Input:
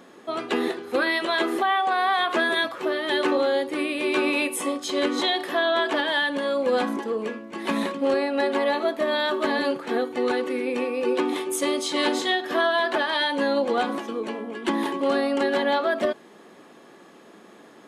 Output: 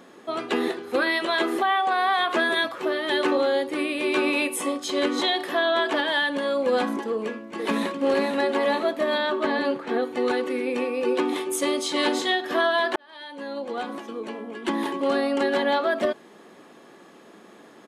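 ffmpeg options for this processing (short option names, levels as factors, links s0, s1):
-filter_complex "[0:a]asplit=2[s0][s1];[s1]afade=t=in:st=7.11:d=0.01,afade=t=out:st=8.02:d=0.01,aecho=0:1:480|960|1440|1920|2400|2880:0.530884|0.265442|0.132721|0.0663606|0.0331803|0.0165901[s2];[s0][s2]amix=inputs=2:normalize=0,asettb=1/sr,asplit=3[s3][s4][s5];[s3]atrim=end=9.184[s6];[s4]atrim=start=9.18:end=10.03,asetpts=PTS-STARTPTS,afade=t=in:d=0.004:c=qsin,afade=t=out:st=0.846:d=0.004:c=qsin,lowpass=f=3600:p=1[s7];[s5]atrim=start=10.026[s8];[s6][s7]acrossfade=d=0.004:c1=hsin:c2=qsin[s9];[s9][s8]acrossfade=d=0.004:c1=qsin:c2=hsin,asplit=2[s10][s11];[s10]atrim=end=12.96,asetpts=PTS-STARTPTS,afade=t=out:st=12.956:d=0.004:c=hsin[s12];[s11]atrim=start=12.96,asetpts=PTS-STARTPTS,afade=t=in:d=2.77:c=qsin[s13];[s12][s13]concat=n=2:v=0:a=1"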